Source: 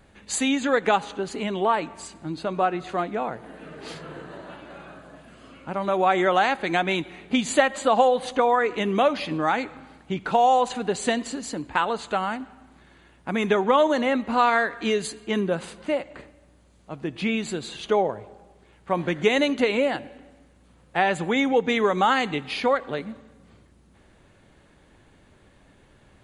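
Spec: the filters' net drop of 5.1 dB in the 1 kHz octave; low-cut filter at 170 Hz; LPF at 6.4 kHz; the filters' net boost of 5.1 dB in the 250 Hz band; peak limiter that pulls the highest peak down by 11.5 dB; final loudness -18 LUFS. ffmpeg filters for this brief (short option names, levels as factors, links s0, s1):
-af "highpass=170,lowpass=6400,equalizer=f=250:t=o:g=7.5,equalizer=f=1000:t=o:g=-8,volume=2.82,alimiter=limit=0.422:level=0:latency=1"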